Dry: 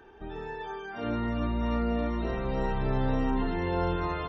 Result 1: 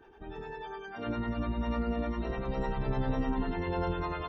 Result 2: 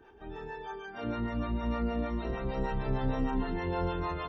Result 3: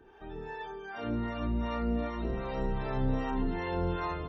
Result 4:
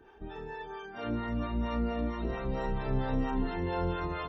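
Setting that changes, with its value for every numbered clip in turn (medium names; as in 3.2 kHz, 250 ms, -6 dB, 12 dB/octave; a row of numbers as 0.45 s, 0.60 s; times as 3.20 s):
harmonic tremolo, rate: 10 Hz, 6.5 Hz, 2.6 Hz, 4.4 Hz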